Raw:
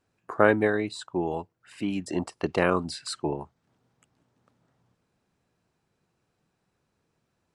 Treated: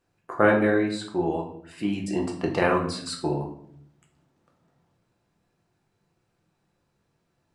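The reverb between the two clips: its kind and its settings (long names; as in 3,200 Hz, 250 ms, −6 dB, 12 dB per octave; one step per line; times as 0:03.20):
rectangular room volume 120 cubic metres, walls mixed, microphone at 0.79 metres
level −1 dB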